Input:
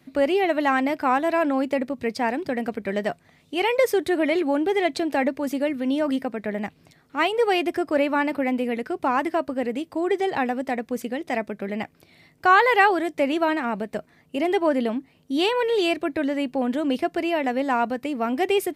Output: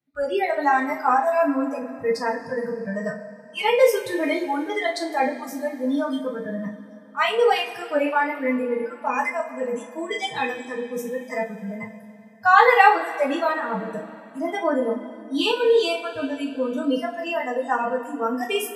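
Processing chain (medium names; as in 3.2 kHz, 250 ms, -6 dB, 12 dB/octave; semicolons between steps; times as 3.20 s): spectral noise reduction 28 dB; 8.96–10.63 s: resonant high shelf 1.8 kHz +7.5 dB, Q 3; two-slope reverb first 0.3 s, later 3.1 s, from -20 dB, DRR -2.5 dB; trim -2 dB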